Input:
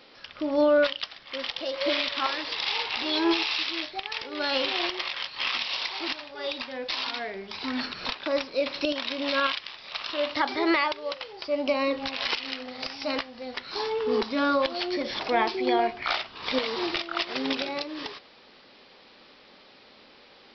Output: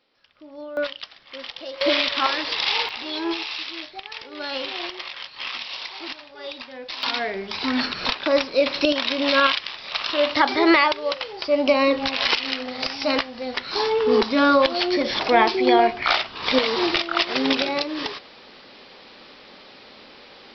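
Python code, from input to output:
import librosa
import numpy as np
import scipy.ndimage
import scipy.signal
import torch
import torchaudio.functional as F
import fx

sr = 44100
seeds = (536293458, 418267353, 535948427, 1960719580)

y = fx.gain(x, sr, db=fx.steps((0.0, -15.5), (0.77, -3.0), (1.81, 6.0), (2.89, -2.5), (7.03, 7.5)))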